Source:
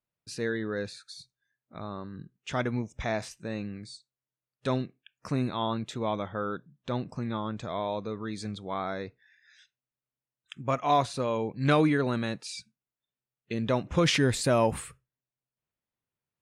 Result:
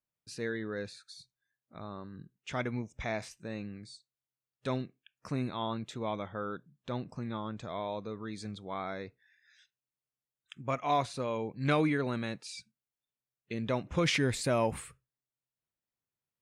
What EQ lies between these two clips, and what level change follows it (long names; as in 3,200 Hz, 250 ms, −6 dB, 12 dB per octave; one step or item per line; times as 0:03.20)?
dynamic equaliser 2,200 Hz, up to +6 dB, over −53 dBFS, Q 6
−5.0 dB